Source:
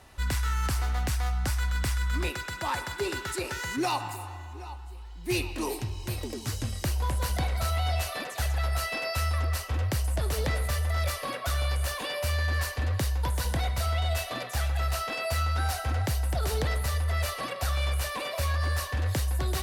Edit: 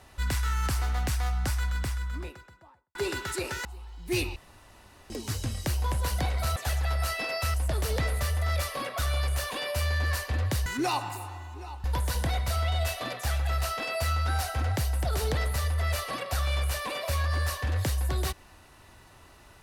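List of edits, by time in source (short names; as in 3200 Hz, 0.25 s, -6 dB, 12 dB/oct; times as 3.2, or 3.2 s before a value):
1.38–2.95 studio fade out
3.65–4.83 move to 13.14
5.54–6.28 room tone
7.74–8.29 cut
9.27–10.02 cut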